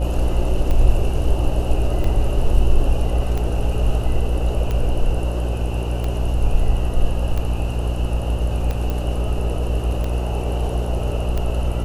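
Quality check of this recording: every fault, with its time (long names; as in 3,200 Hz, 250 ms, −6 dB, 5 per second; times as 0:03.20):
mains buzz 60 Hz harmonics 14 −22 dBFS
scratch tick 45 rpm −13 dBFS
0:08.90: click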